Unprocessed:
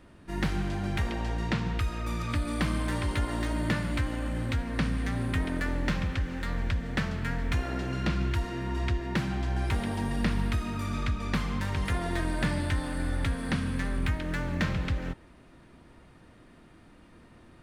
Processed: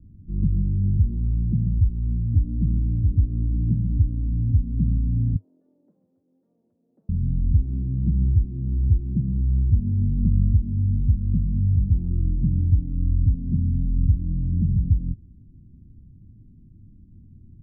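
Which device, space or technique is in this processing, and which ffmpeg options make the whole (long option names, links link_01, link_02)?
the neighbour's flat through the wall: -filter_complex "[0:a]asettb=1/sr,asplit=3[link_01][link_02][link_03];[link_01]atrim=end=5.364[link_04];[link_02]atrim=start=5.36:end=7.09,asetpts=PTS-STARTPTS,afade=type=in:duration=0.004:curve=qsin,afade=type=out:start_time=1.726:duration=0.004:curve=qsin,highpass=frequency=580:width=0.5412,highpass=frequency=580:width=1.3066[link_05];[link_03]atrim=start=7.086[link_06];[link_04][link_05]acrossfade=duration=0.004:curve1=hsin:curve2=qsin[link_07];[link_07][link_06]acrossfade=duration=0.004:curve1=qsin:curve2=hsin,lowpass=frequency=230:width=0.5412,lowpass=frequency=230:width=1.3066,equalizer=frequency=100:width_type=o:width=0.52:gain=6.5,lowshelf=frequency=140:gain=5.5,volume=4dB"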